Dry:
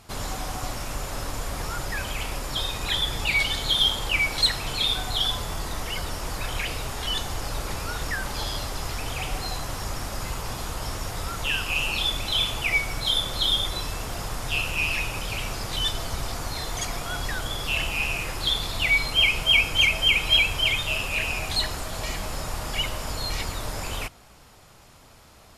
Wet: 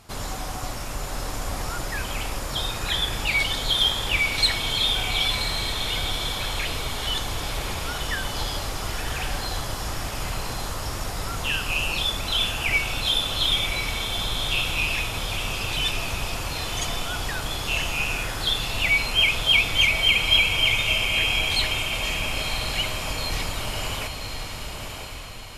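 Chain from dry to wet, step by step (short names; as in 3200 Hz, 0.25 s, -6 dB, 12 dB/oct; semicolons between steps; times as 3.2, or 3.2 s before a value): diffused feedback echo 1.046 s, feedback 44%, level -4.5 dB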